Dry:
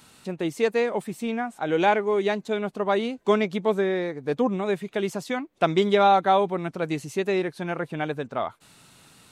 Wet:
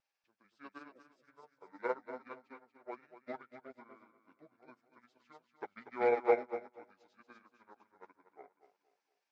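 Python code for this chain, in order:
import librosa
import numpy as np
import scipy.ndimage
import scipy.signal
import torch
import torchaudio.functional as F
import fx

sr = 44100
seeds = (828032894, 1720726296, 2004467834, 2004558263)

y = fx.pitch_heads(x, sr, semitones=-8.5)
y = scipy.signal.sosfilt(scipy.signal.butter(2, 600.0, 'highpass', fs=sr, output='sos'), y)
y = fx.high_shelf(y, sr, hz=8300.0, db=-11.0)
y = fx.vibrato(y, sr, rate_hz=0.48, depth_cents=11.0)
y = fx.echo_feedback(y, sr, ms=238, feedback_pct=48, wet_db=-5.0)
y = fx.upward_expand(y, sr, threshold_db=-40.0, expansion=2.5)
y = y * 10.0 ** (-2.0 / 20.0)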